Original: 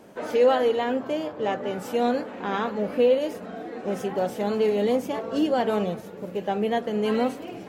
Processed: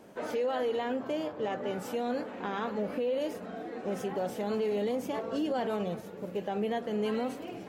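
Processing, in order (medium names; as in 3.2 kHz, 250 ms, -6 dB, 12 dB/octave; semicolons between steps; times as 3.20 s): peak limiter -20 dBFS, peak gain reduction 9.5 dB; trim -4 dB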